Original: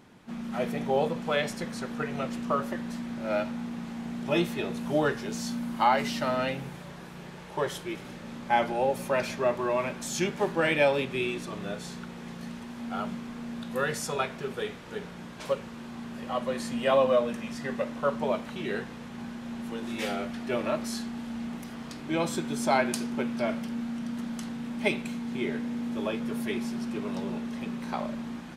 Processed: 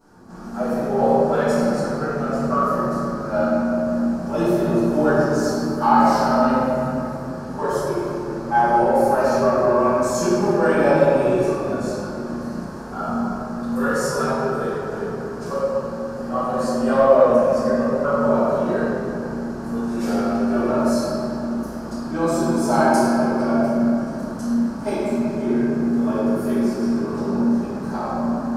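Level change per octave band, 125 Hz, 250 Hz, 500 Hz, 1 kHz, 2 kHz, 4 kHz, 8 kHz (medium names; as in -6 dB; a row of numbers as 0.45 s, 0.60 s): +10.0 dB, +11.5 dB, +10.5 dB, +10.5 dB, +4.5 dB, -0.5 dB, +5.5 dB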